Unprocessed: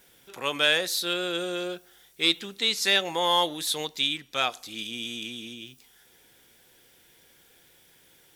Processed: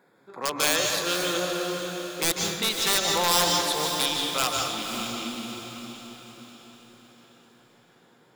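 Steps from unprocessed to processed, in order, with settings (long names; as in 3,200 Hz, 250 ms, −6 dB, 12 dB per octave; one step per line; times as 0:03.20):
adaptive Wiener filter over 15 samples
high-pass filter 140 Hz 24 dB per octave
parametric band 1,100 Hz +5 dB 0.64 octaves
in parallel at −2 dB: downward compressor 6 to 1, threshold −33 dBFS, peak gain reduction 15.5 dB
on the sum: wrap-around overflow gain 12.5 dB
feedback delay with all-pass diffusion 533 ms, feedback 47%, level −7.5 dB
on a send at −2.5 dB: convolution reverb RT60 1.1 s, pre-delay 141 ms
on the sum: level −2.5 dB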